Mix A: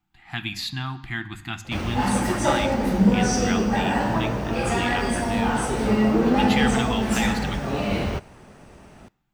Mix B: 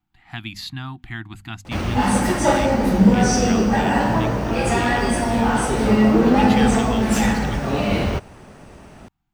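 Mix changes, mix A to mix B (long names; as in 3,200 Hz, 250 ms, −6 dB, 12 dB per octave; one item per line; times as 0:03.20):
background +4.5 dB
reverb: off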